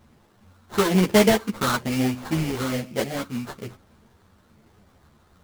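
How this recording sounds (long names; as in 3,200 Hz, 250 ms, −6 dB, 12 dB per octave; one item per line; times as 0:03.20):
a quantiser's noise floor 10 bits, dither triangular
phaser sweep stages 12, 1.1 Hz, lowest notch 530–1,900 Hz
aliases and images of a low sample rate 2,600 Hz, jitter 20%
a shimmering, thickened sound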